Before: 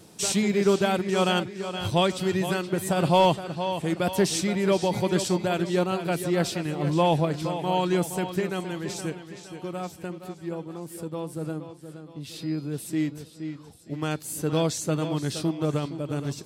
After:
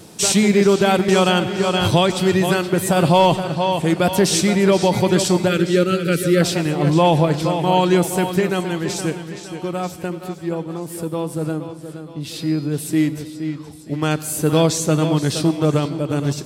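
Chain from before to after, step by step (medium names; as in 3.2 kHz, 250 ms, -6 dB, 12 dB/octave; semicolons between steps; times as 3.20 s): 5.48–6.42 s: time-frequency box 560–1200 Hz -21 dB; on a send at -17 dB: treble shelf 9.6 kHz +10.5 dB + reverberation RT60 1.4 s, pre-delay 91 ms; on the sum: loudness maximiser +13.5 dB; 1.08–2.10 s: three bands compressed up and down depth 70%; trim -4.5 dB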